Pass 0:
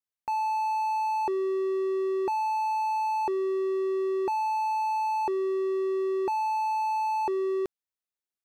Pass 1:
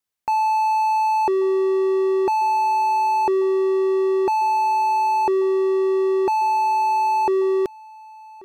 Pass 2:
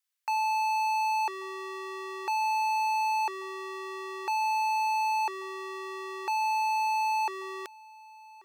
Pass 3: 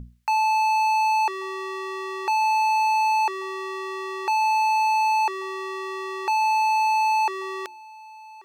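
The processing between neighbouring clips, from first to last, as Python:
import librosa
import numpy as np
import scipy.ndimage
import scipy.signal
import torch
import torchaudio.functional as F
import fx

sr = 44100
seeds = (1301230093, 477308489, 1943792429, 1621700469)

y1 = x + 10.0 ** (-23.0 / 20.0) * np.pad(x, (int(1136 * sr / 1000.0), 0))[:len(x)]
y1 = y1 * librosa.db_to_amplitude(8.5)
y2 = scipy.signal.sosfilt(scipy.signal.butter(2, 1400.0, 'highpass', fs=sr, output='sos'), y1)
y3 = fx.high_shelf(y2, sr, hz=8000.0, db=-5.0)
y3 = fx.dmg_buzz(y3, sr, base_hz=60.0, harmonics=4, level_db=-41.0, tilt_db=-6, odd_only=False)
y3 = fx.hum_notches(y3, sr, base_hz=60, count=6)
y3 = y3 * librosa.db_to_amplitude(7.0)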